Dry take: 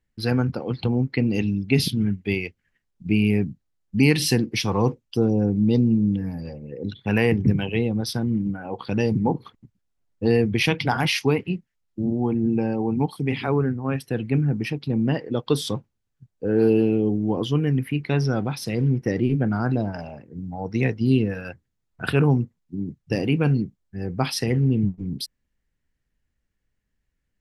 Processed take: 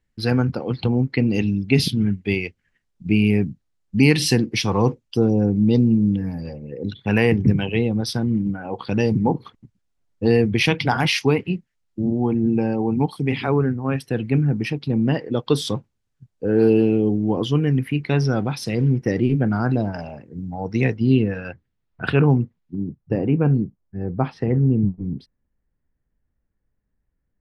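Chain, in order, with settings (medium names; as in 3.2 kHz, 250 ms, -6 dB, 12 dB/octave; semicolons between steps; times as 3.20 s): low-pass 10 kHz 12 dB/octave, from 20.97 s 3.7 kHz, from 22.75 s 1.2 kHz; trim +2.5 dB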